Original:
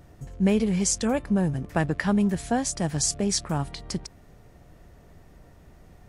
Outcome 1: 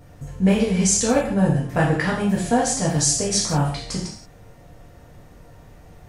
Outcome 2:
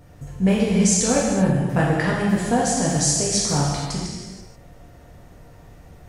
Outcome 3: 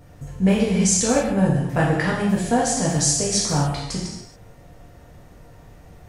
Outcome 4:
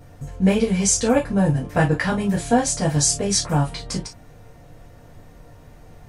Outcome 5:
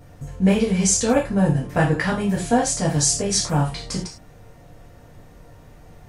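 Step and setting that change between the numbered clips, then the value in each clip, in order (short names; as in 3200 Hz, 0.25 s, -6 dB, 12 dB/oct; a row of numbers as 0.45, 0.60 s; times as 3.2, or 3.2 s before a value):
non-linear reverb, gate: 210, 510, 310, 80, 130 ms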